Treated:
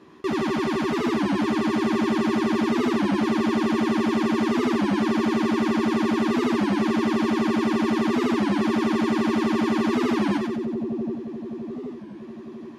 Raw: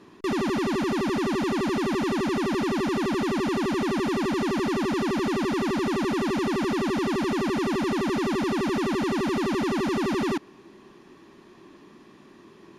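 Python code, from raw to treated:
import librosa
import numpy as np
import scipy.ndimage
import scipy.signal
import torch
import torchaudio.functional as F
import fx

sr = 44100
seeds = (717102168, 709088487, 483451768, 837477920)

y = scipy.signal.sosfilt(scipy.signal.butter(2, 50.0, 'highpass', fs=sr, output='sos'), x)
y = fx.high_shelf(y, sr, hz=4900.0, db=-6.5)
y = fx.doubler(y, sr, ms=13.0, db=-6.5)
y = fx.echo_split(y, sr, split_hz=600.0, low_ms=777, high_ms=91, feedback_pct=52, wet_db=-4)
y = fx.record_warp(y, sr, rpm=33.33, depth_cents=160.0)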